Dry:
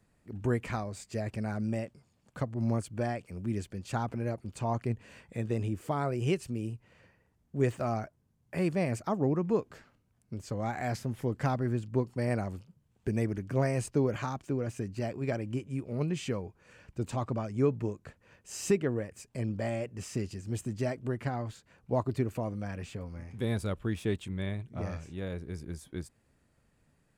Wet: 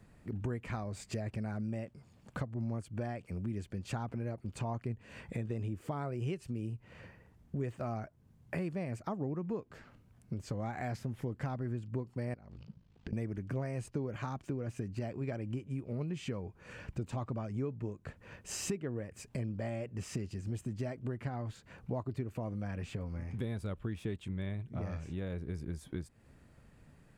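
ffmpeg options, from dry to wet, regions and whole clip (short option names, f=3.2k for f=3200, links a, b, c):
-filter_complex "[0:a]asettb=1/sr,asplit=3[a][b][c];[a]atrim=end=12.344[d];[b]atrim=start=12.34:end=13.13,asetpts=PTS-STARTPTS,afade=t=in:d=0.004:c=qsin,afade=t=out:st=0.786:d=0.004:c=qsin,acompressor=threshold=-45dB:ratio=16:attack=3.2:release=140:knee=1:detection=peak,lowpass=f=4.7k:t=q:w=1.8,aeval=exprs='val(0)*sin(2*PI*27*n/s)':c=same[e];[c]atrim=start=13.126[f];[d][e]acrossfade=d=0.004:c1=hsin:c2=qsin[g];[g][f]acrossfade=d=0.004:c1=qsin:c2=hsin,bass=f=250:g=3,treble=f=4k:g=-5,acompressor=threshold=-45dB:ratio=4,volume=7.5dB"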